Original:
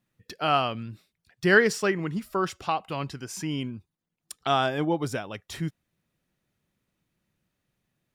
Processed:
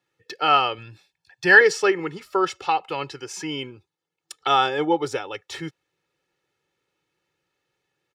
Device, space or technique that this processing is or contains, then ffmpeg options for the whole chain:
low shelf boost with a cut just above: -filter_complex "[0:a]highpass=f=120:p=1,acrossover=split=180 7200:gain=0.141 1 0.2[a][b][c];[a][b][c]amix=inputs=3:normalize=0,lowshelf=f=79:g=7.5,equalizer=f=270:t=o:w=0.83:g=-3,aecho=1:1:2.3:0.83,asettb=1/sr,asplit=3[d][e][f];[d]atrim=end=0.784[g];[e]atrim=start=0.78:end=1.61,asetpts=PTS-STARTPTS,afade=t=in:d=0.004:c=qsin,afade=t=out:st=0.826:d=0.004:c=qsin,aecho=1:1:1.2:0.57,atrim=end_sample=36603[h];[f]atrim=start=1.606[i];[g][h]acrossfade=d=0.004:c1=hsin:c2=qsin[j];[j][i]acrossfade=d=0.004:c1=qsin:c2=hsin,volume=3.5dB"

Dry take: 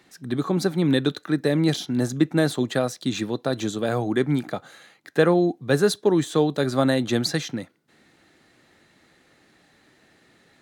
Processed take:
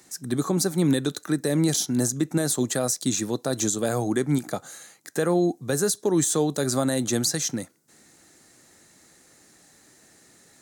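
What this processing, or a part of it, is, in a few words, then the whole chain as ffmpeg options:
over-bright horn tweeter: -af "highshelf=f=4.8k:t=q:w=1.5:g=13,alimiter=limit=-13dB:level=0:latency=1:release=125"

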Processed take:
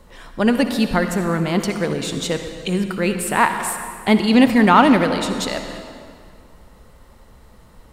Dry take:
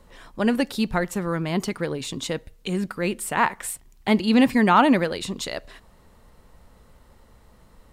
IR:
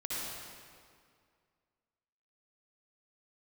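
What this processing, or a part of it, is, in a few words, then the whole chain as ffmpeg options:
saturated reverb return: -filter_complex "[0:a]asplit=2[a][b];[1:a]atrim=start_sample=2205[c];[b][c]afir=irnorm=-1:irlink=0,asoftclip=type=tanh:threshold=-13.5dB,volume=-7.5dB[d];[a][d]amix=inputs=2:normalize=0,volume=3dB"

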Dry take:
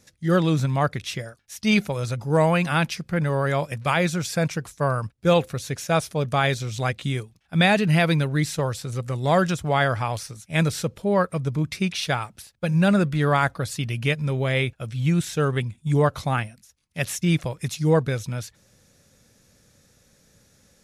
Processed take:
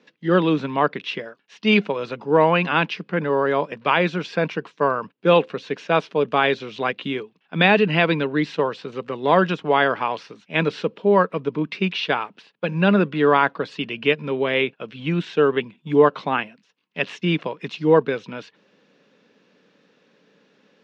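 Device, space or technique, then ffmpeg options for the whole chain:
kitchen radio: -filter_complex "[0:a]highpass=f=160:w=0.5412,highpass=f=160:w=1.3066,highpass=180,equalizer=f=190:t=q:w=4:g=4,equalizer=f=290:t=q:w=4:g=6,equalizer=f=430:t=q:w=4:g=9,equalizer=f=1k:t=q:w=4:g=8,equalizer=f=1.6k:t=q:w=4:g=3,equalizer=f=2.8k:t=q:w=4:g=8,lowpass=f=4k:w=0.5412,lowpass=f=4k:w=1.3066,asettb=1/sr,asplit=3[a][b][c];[a]atrim=end=3.244[d];[b]atrim=start=3.24:end=3.85,asetpts=PTS-STARTPTS,afade=t=in:d=0.004:c=qsin,afade=t=out:st=0.606:d=0.004:c=qsin,equalizer=f=2.6k:t=o:w=0.91:g=-4.5[e];[c]atrim=start=3.846[f];[d][e]acrossfade=d=0.004:c1=hsin:c2=qsin[g];[g][f]acrossfade=d=0.004:c1=qsin:c2=hsin"

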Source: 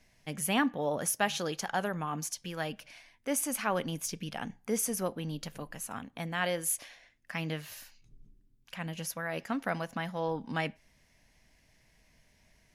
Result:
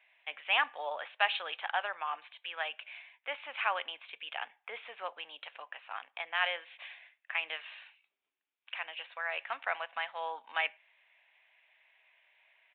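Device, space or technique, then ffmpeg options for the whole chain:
musical greeting card: -af "aresample=8000,aresample=44100,highpass=f=720:w=0.5412,highpass=f=720:w=1.3066,equalizer=f=2.5k:t=o:w=0.47:g=7,volume=1dB"

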